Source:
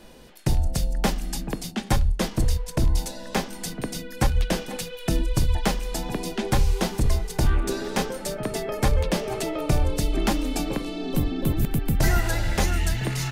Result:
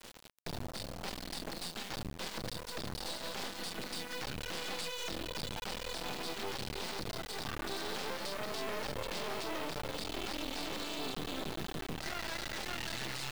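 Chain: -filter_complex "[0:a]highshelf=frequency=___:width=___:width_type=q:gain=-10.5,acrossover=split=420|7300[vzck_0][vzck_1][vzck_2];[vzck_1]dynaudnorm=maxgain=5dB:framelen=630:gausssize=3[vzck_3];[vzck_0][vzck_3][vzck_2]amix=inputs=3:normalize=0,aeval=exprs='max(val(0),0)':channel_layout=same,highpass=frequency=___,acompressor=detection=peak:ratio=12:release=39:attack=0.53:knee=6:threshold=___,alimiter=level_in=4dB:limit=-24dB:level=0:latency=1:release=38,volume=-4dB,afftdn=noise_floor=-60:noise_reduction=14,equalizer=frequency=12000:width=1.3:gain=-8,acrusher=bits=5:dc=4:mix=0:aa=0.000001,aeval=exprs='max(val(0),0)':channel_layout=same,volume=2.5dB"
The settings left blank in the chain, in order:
5900, 3, 160, -32dB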